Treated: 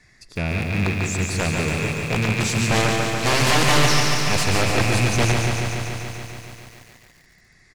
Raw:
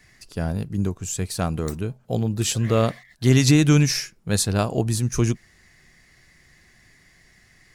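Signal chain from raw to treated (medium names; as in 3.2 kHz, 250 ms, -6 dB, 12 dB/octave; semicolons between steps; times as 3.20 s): rattle on loud lows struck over -30 dBFS, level -15 dBFS; treble shelf 5 kHz +5 dB; band-stop 3 kHz, Q 5.3; integer overflow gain 13 dB; distance through air 59 m; feedback delay 176 ms, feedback 43%, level -8 dB; bit-crushed delay 143 ms, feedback 80%, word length 8-bit, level -5 dB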